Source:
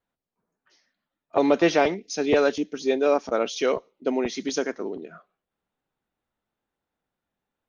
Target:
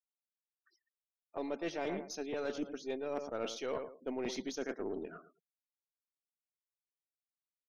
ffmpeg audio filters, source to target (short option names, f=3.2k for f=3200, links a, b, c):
-filter_complex "[0:a]highpass=54,asplit=2[a][b];[b]adelay=111,lowpass=f=1.9k:p=1,volume=-14dB,asplit=2[c][d];[d]adelay=111,lowpass=f=1.9k:p=1,volume=0.34,asplit=2[e][f];[f]adelay=111,lowpass=f=1.9k:p=1,volume=0.34[g];[a][c][e][g]amix=inputs=4:normalize=0,areverse,acompressor=threshold=-29dB:ratio=10,areverse,afftfilt=real='re*gte(hypot(re,im),0.00224)':imag='im*gte(hypot(re,im),0.00224)':win_size=1024:overlap=0.75,aeval=exprs='0.0841*(cos(1*acos(clip(val(0)/0.0841,-1,1)))-cos(1*PI/2))+0.00473*(cos(4*acos(clip(val(0)/0.0841,-1,1)))-cos(4*PI/2))':c=same,volume=-5.5dB"